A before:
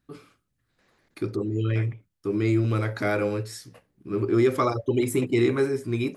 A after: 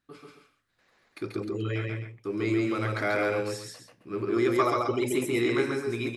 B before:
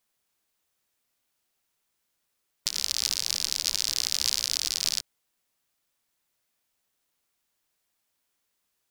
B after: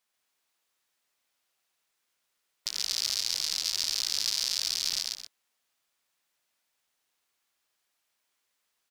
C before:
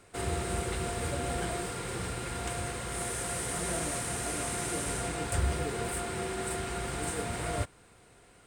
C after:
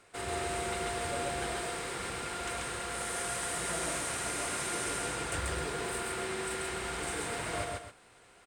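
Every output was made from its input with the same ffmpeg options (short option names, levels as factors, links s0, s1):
-filter_complex "[0:a]asplit=2[s0][s1];[s1]highpass=f=720:p=1,volume=2.82,asoftclip=type=tanh:threshold=0.631[s2];[s0][s2]amix=inputs=2:normalize=0,lowpass=f=6200:p=1,volume=0.501,aecho=1:1:137|262.4:0.794|0.282,volume=0.562"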